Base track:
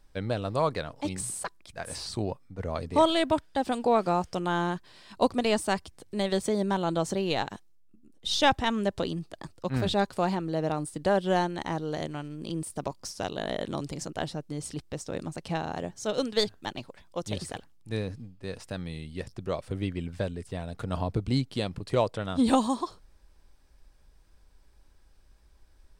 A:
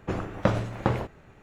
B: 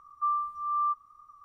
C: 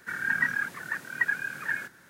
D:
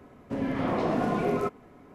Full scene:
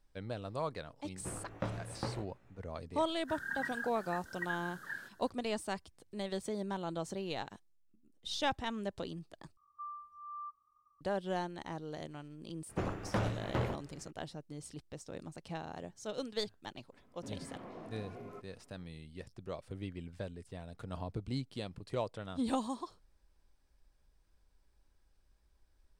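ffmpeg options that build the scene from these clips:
ffmpeg -i bed.wav -i cue0.wav -i cue1.wav -i cue2.wav -i cue3.wav -filter_complex "[1:a]asplit=2[link_01][link_02];[0:a]volume=-11dB[link_03];[link_01]flanger=delay=16:depth=2.4:speed=1.7[link_04];[3:a]asuperstop=centerf=2400:order=4:qfactor=2.1[link_05];[link_02]asoftclip=type=hard:threshold=-21dB[link_06];[4:a]alimiter=limit=-23.5dB:level=0:latency=1:release=234[link_07];[link_03]asplit=2[link_08][link_09];[link_08]atrim=end=9.574[link_10];[2:a]atrim=end=1.44,asetpts=PTS-STARTPTS,volume=-17dB[link_11];[link_09]atrim=start=11.006[link_12];[link_04]atrim=end=1.42,asetpts=PTS-STARTPTS,volume=-11dB,afade=type=in:duration=0.004:curve=hsin,afade=type=out:start_time=1.416:duration=0.004:curve=hsin,adelay=1170[link_13];[link_05]atrim=end=2.09,asetpts=PTS-STARTPTS,volume=-11.5dB,afade=type=in:duration=0.004:curve=hsin,afade=type=out:start_time=2.086:duration=0.004:curve=hsin,adelay=141561S[link_14];[link_06]atrim=end=1.42,asetpts=PTS-STARTPTS,volume=-6dB,afade=type=in:duration=0.004:curve=hsin,afade=type=out:start_time=1.416:duration=0.004:curve=hsin,adelay=12690[link_15];[link_07]atrim=end=1.94,asetpts=PTS-STARTPTS,volume=-16.5dB,afade=type=in:duration=0.004:curve=hsin,afade=type=out:start_time=1.936:duration=0.004:curve=hsin,adelay=16920[link_16];[link_10][link_11]acrossfade=duration=0.004:curve1=hsin:curve2=hsin[link_17];[link_17][link_12]acrossfade=duration=0.004:curve1=hsin:curve2=hsin[link_18];[link_18][link_13][link_14][link_15][link_16]amix=inputs=5:normalize=0" out.wav

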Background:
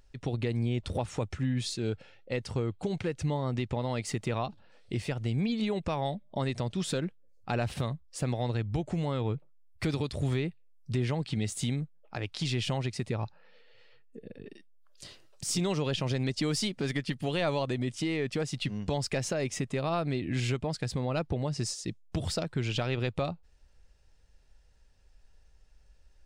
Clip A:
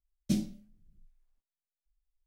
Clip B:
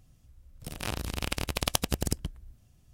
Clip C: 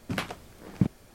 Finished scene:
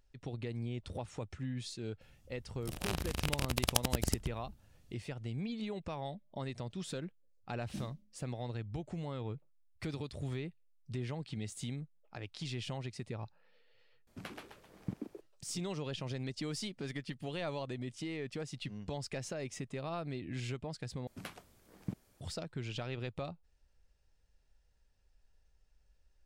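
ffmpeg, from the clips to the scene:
ffmpeg -i bed.wav -i cue0.wav -i cue1.wav -i cue2.wav -filter_complex "[3:a]asplit=2[link_01][link_02];[0:a]volume=-9.5dB[link_03];[link_01]asplit=6[link_04][link_05][link_06][link_07][link_08][link_09];[link_05]adelay=131,afreqshift=110,volume=-4.5dB[link_10];[link_06]adelay=262,afreqshift=220,volume=-12dB[link_11];[link_07]adelay=393,afreqshift=330,volume=-19.6dB[link_12];[link_08]adelay=524,afreqshift=440,volume=-27.1dB[link_13];[link_09]adelay=655,afreqshift=550,volume=-34.6dB[link_14];[link_04][link_10][link_11][link_12][link_13][link_14]amix=inputs=6:normalize=0[link_15];[link_02]highshelf=frequency=6700:gain=7[link_16];[link_03]asplit=3[link_17][link_18][link_19];[link_17]atrim=end=14.074[link_20];[link_15]atrim=end=1.14,asetpts=PTS-STARTPTS,volume=-15.5dB[link_21];[link_18]atrim=start=15.206:end=21.074[link_22];[link_16]atrim=end=1.14,asetpts=PTS-STARTPTS,volume=-15.5dB[link_23];[link_19]atrim=start=22.206[link_24];[2:a]atrim=end=2.93,asetpts=PTS-STARTPTS,volume=-3.5dB,afade=type=in:duration=0.004:curve=hsin,afade=type=out:start_time=2.926:duration=0.004:curve=hsin,adelay=2010[link_25];[1:a]atrim=end=2.26,asetpts=PTS-STARTPTS,volume=-14.5dB,afade=type=in:duration=0.004:curve=hsin,afade=type=out:start_time=2.256:duration=0.004:curve=hsin,adelay=7440[link_26];[link_20][link_21]acrossfade=duration=0.004:curve1=hsin:curve2=hsin[link_27];[link_27][link_22]acrossfade=duration=0.004:curve1=hsin:curve2=hsin[link_28];[link_28][link_23]acrossfade=duration=0.004:curve1=hsin:curve2=hsin[link_29];[link_29][link_24]acrossfade=duration=0.004:curve1=hsin:curve2=hsin[link_30];[link_30][link_25][link_26]amix=inputs=3:normalize=0" out.wav

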